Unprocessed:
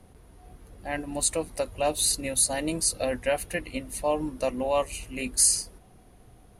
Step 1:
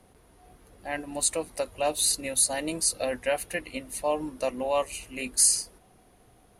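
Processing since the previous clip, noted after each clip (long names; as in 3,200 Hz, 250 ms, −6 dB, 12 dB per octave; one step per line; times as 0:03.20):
low-shelf EQ 200 Hz −9.5 dB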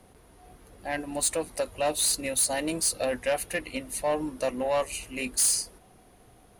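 soft clipping −21.5 dBFS, distortion −12 dB
level +2.5 dB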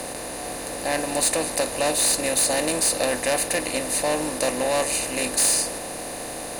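compressor on every frequency bin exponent 0.4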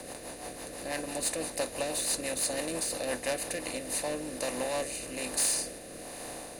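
rotating-speaker cabinet horn 6 Hz, later 1.2 Hz, at 0:03.30
level −7.5 dB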